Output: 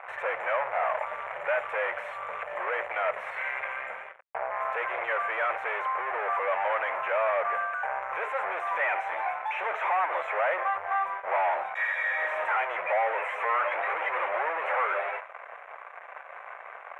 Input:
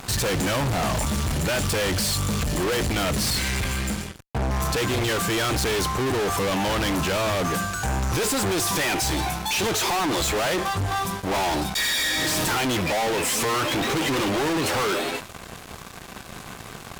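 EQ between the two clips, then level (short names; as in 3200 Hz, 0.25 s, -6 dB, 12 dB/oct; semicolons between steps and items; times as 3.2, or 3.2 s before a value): elliptic band-pass 560–2200 Hz, stop band 40 dB; 0.0 dB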